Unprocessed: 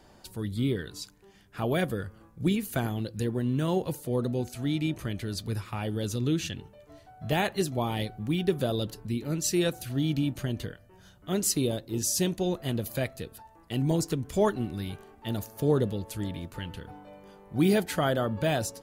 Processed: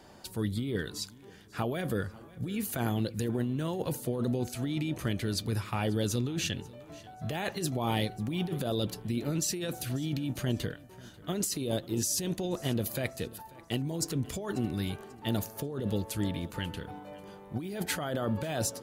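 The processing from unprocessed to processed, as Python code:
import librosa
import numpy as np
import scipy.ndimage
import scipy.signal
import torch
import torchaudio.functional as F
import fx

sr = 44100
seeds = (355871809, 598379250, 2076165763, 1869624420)

p1 = fx.highpass(x, sr, hz=79.0, slope=6)
p2 = fx.over_compress(p1, sr, threshold_db=-31.0, ratio=-1.0)
y = p2 + fx.echo_feedback(p2, sr, ms=540, feedback_pct=37, wet_db=-21.5, dry=0)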